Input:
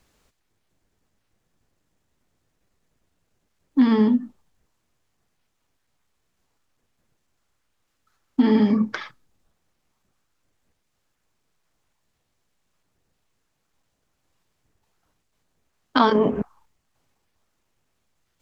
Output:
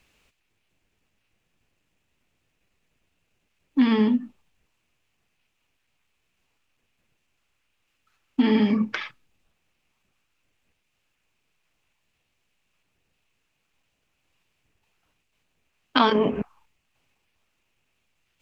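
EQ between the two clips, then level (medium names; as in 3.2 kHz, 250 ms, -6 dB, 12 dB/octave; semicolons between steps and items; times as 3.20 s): peaking EQ 2.6 kHz +12.5 dB 0.65 oct; -2.5 dB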